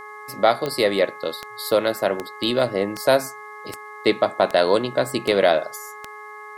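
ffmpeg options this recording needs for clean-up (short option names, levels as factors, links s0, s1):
-af "adeclick=t=4,bandreject=f=420.7:t=h:w=4,bandreject=f=841.4:t=h:w=4,bandreject=f=1262.1:t=h:w=4,bandreject=f=1682.8:t=h:w=4,bandreject=f=2103.5:t=h:w=4,bandreject=f=1100:w=30,agate=range=0.0891:threshold=0.0282"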